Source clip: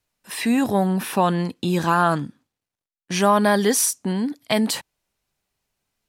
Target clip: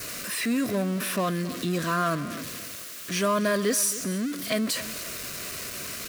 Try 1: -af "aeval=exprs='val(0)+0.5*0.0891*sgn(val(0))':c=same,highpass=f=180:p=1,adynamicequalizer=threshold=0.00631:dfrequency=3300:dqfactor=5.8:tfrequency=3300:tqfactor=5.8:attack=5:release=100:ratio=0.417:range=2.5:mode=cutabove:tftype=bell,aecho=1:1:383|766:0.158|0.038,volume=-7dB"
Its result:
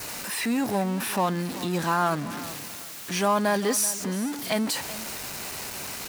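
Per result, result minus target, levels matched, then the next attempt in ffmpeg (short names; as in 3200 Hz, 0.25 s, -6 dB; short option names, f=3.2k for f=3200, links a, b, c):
echo 0.113 s late; 1000 Hz band +3.5 dB
-af "aeval=exprs='val(0)+0.5*0.0891*sgn(val(0))':c=same,highpass=f=180:p=1,adynamicequalizer=threshold=0.00631:dfrequency=3300:dqfactor=5.8:tfrequency=3300:tqfactor=5.8:attack=5:release=100:ratio=0.417:range=2.5:mode=cutabove:tftype=bell,aecho=1:1:270|540:0.158|0.038,volume=-7dB"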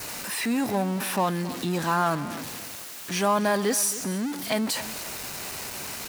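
1000 Hz band +3.5 dB
-af "aeval=exprs='val(0)+0.5*0.0891*sgn(val(0))':c=same,highpass=f=180:p=1,adynamicequalizer=threshold=0.00631:dfrequency=3300:dqfactor=5.8:tfrequency=3300:tqfactor=5.8:attack=5:release=100:ratio=0.417:range=2.5:mode=cutabove:tftype=bell,asuperstop=centerf=850:order=4:qfactor=2.6,aecho=1:1:270|540:0.158|0.038,volume=-7dB"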